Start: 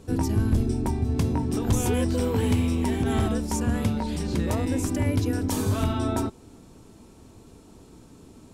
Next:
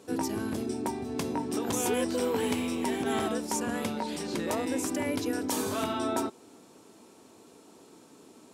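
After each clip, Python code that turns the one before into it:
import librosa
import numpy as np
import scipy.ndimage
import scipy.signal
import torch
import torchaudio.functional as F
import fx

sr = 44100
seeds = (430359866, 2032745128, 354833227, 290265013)

y = scipy.signal.sosfilt(scipy.signal.butter(2, 320.0, 'highpass', fs=sr, output='sos'), x)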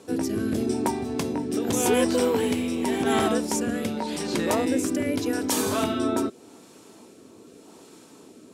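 y = fx.rotary(x, sr, hz=0.85)
y = y * librosa.db_to_amplitude(7.5)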